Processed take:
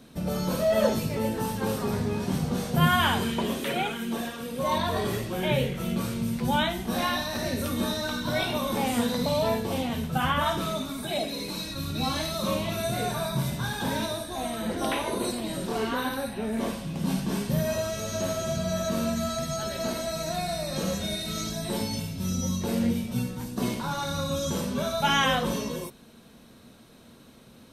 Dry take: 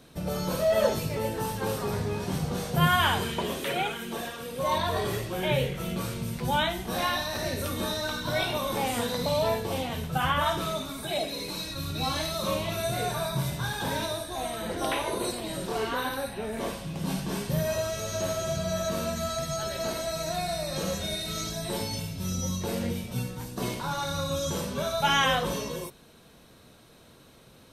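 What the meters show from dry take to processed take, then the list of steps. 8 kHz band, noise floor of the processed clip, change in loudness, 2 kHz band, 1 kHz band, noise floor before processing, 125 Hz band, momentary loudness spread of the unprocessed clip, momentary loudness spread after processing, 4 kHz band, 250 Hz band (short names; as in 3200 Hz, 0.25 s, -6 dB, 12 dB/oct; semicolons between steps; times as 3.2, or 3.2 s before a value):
0.0 dB, -51 dBFS, +1.0 dB, 0.0 dB, 0.0 dB, -54 dBFS, +1.5 dB, 8 LU, 7 LU, 0.0 dB, +5.0 dB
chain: bell 230 Hz +9 dB 0.48 oct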